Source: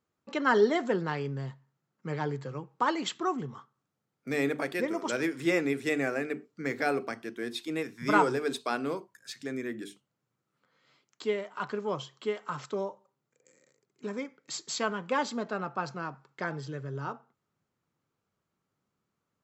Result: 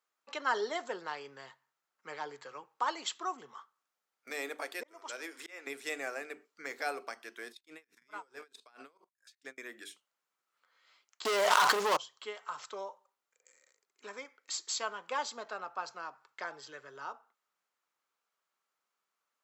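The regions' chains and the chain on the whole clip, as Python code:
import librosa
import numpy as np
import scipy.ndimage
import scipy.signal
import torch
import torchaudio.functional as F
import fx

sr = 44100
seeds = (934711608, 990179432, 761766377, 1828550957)

y = fx.chain(x, sr, fx.highpass(hz=200.0, slope=24),
    fx.auto_swell(attack_ms=587.0), at=(4.3, 5.67))
y = fx.chain(y, sr, fx.low_shelf(hz=210.0, db=11.0),
    fx.level_steps(step_db=17),
    fx.tremolo_db(hz=4.6, depth_db=30), at=(7.52, 9.58))
y = fx.chain(y, sr, fx.leveller(passes=5),
    fx.env_flatten(amount_pct=100), at=(11.25, 11.97))
y = scipy.signal.sosfilt(scipy.signal.butter(2, 860.0, 'highpass', fs=sr, output='sos'), y)
y = fx.dynamic_eq(y, sr, hz=1900.0, q=0.78, threshold_db=-46.0, ratio=4.0, max_db=-7)
y = y * 10.0 ** (1.0 / 20.0)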